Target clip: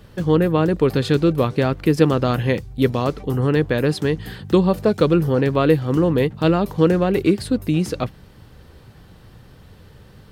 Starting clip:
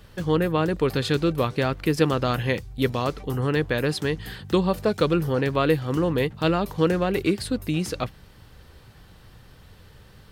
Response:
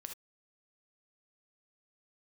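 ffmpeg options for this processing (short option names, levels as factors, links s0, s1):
-af "equalizer=f=230:w=0.32:g=6.5"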